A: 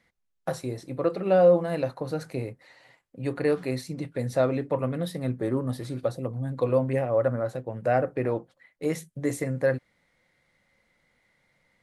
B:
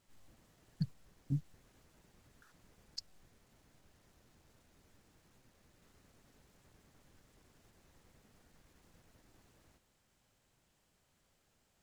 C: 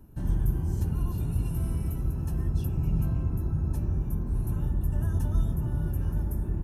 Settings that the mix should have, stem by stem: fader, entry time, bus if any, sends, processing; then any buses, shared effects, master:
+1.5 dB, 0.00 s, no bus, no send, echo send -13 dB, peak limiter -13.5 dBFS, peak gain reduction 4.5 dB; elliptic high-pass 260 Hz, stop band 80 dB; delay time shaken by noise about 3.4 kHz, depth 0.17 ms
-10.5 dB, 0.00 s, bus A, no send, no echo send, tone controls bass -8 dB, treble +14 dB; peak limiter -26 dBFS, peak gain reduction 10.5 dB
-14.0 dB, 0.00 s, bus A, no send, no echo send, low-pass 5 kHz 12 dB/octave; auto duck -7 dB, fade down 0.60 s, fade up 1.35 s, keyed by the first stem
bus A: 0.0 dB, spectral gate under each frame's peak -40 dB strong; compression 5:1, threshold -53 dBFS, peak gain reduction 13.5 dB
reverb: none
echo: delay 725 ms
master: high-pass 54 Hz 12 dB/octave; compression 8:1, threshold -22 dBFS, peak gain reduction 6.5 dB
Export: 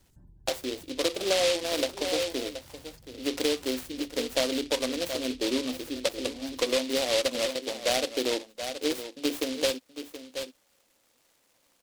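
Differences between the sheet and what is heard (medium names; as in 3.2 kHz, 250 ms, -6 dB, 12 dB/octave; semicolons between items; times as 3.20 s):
stem A: missing peak limiter -13.5 dBFS, peak gain reduction 4.5 dB; stem C: missing low-pass 5 kHz 12 dB/octave; master: missing high-pass 54 Hz 12 dB/octave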